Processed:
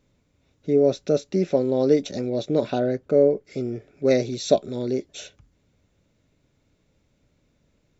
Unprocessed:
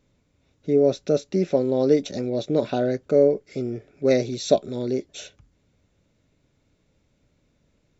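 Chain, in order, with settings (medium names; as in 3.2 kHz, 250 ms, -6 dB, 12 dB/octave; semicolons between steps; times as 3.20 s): 2.79–3.45 s: treble shelf 3.2 kHz -8.5 dB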